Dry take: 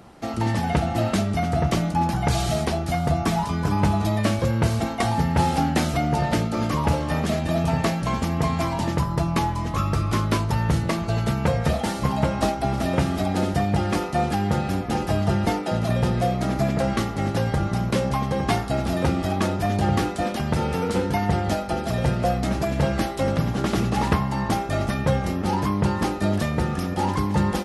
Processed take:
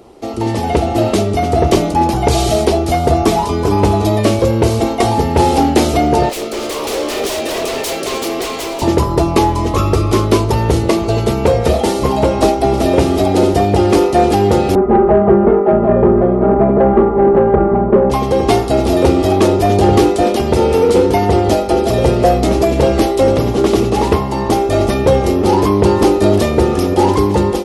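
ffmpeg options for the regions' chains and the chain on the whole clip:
ffmpeg -i in.wav -filter_complex "[0:a]asettb=1/sr,asplit=3[link_01][link_02][link_03];[link_01]atrim=end=6.294[link_04];[link_02]atrim=start=6.29:end=8.82,asetpts=PTS-STARTPTS,afade=type=in:duration=0.004:curve=qsin,afade=type=out:start_time=2.526:duration=0.004:curve=qsin,highpass=440,equalizer=frequency=910:width=3.7:gain=-13,aeval=exprs='0.0299*(abs(mod(val(0)/0.0299+3,4)-2)-1)':channel_layout=same[link_05];[link_03]atrim=start=8.816[link_06];[link_04][link_05]acrossfade=duration=0.004:curve1=hsin:curve2=qsin[link_07];[link_07][link_06]acrossfade=duration=0.004:curve1=qsin:curve2=hsin,asettb=1/sr,asplit=3[link_08][link_09][link_10];[link_08]atrim=end=14.754[link_11];[link_09]atrim=start=14.75:end=18.1,asetpts=PTS-STARTPTS,afade=type=in:duration=0.004:curve=qsin,afade=type=out:start_time=3.346:duration=0.004:curve=qsin,lowpass=frequency=1400:width=0.5412,lowpass=frequency=1400:width=1.3066,aecho=1:1:5:0.81,atrim=end_sample=147735[link_12];[link_10]atrim=start=18.096[link_13];[link_11][link_12]acrossfade=duration=0.004:curve1=hsin:curve2=qsin[link_14];[link_14][link_13]acrossfade=duration=0.004:curve1=qsin:curve2=hsin,dynaudnorm=framelen=350:gausssize=3:maxgain=11.5dB,equalizer=frequency=160:width_type=o:width=0.67:gain=-11,equalizer=frequency=400:width_type=o:width=0.67:gain=11,equalizer=frequency=1600:width_type=o:width=0.67:gain=-9,acontrast=26,volume=-1dB" out.wav

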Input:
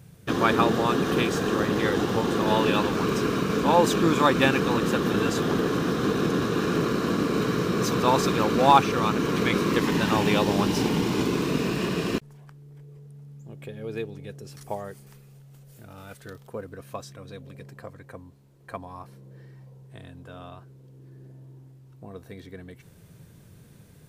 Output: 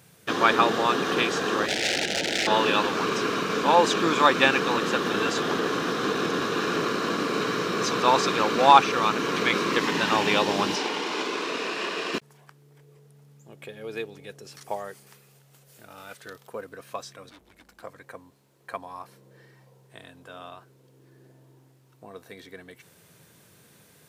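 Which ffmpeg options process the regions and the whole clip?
ffmpeg -i in.wav -filter_complex "[0:a]asettb=1/sr,asplit=3[link_01][link_02][link_03];[link_01]atrim=end=1.664[link_04];[link_02]atrim=start=1.66:end=2.47,asetpts=PTS-STARTPTS,afade=type=in:duration=0.004:curve=qsin,afade=type=out:start_time=0.806:duration=0.004:curve=qsin,aeval=exprs='(mod(9.44*val(0)+1,2)-1)/9.44':channel_layout=same,asuperstop=centerf=1100:order=4:qfactor=1.2[link_05];[link_03]atrim=start=2.466[link_06];[link_04][link_05]acrossfade=duration=0.004:curve1=hsin:curve2=qsin[link_07];[link_07][link_06]acrossfade=duration=0.004:curve1=qsin:curve2=hsin,asettb=1/sr,asplit=3[link_08][link_09][link_10];[link_08]atrim=end=10.764[link_11];[link_09]atrim=start=10.76:end=12.14,asetpts=PTS-STARTPTS,afade=type=in:duration=0.004:curve=qsin,afade=type=out:start_time=1.376:duration=0.004:curve=qsin,highpass=380,adynamicsmooth=sensitivity=4.5:basefreq=6500[link_12];[link_10]atrim=start=12.136[link_13];[link_11][link_12]acrossfade=duration=0.004:curve1=hsin:curve2=qsin[link_14];[link_14][link_13]acrossfade=duration=0.004:curve1=qsin:curve2=hsin,asettb=1/sr,asplit=3[link_15][link_16][link_17];[link_15]atrim=end=17.294[link_18];[link_16]atrim=start=17.29:end=17.83,asetpts=PTS-STARTPTS,afade=type=in:duration=0.004:curve=qsin,afade=type=out:start_time=0.536:duration=0.004:curve=qsin,aeval=exprs='(tanh(178*val(0)+0.25)-tanh(0.25))/178':channel_layout=same,afreqshift=-190[link_19];[link_17]atrim=start=17.826[link_20];[link_18][link_19]acrossfade=duration=0.004:curve1=hsin:curve2=qsin[link_21];[link_21][link_20]acrossfade=duration=0.004:curve1=qsin:curve2=hsin,highpass=frequency=720:poles=1,acrossover=split=7200[link_22][link_23];[link_23]acompressor=threshold=-58dB:ratio=4:attack=1:release=60[link_24];[link_22][link_24]amix=inputs=2:normalize=0,volume=4.5dB" out.wav

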